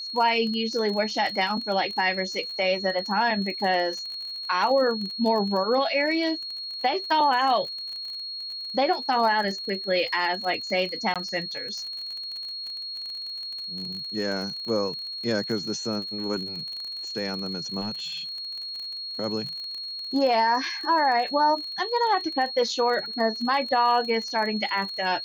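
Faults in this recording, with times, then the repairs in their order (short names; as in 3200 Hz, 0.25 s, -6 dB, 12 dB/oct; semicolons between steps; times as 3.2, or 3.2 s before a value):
crackle 33/s -32 dBFS
tone 4300 Hz -32 dBFS
11.14–11.16 gap 17 ms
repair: de-click; notch 4300 Hz, Q 30; interpolate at 11.14, 17 ms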